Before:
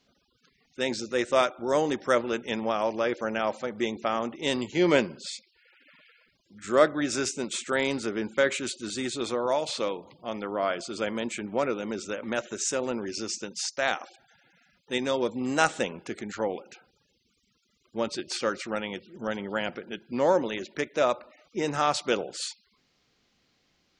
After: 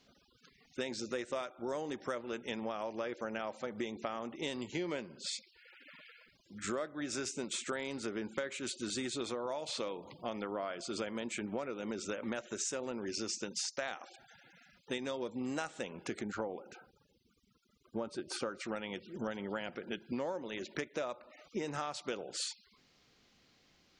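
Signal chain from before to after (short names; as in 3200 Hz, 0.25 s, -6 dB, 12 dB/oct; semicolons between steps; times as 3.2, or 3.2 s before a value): spectral gain 16.22–18.61, 1600–8400 Hz -9 dB; compressor 12:1, threshold -36 dBFS, peak gain reduction 22 dB; gain +1.5 dB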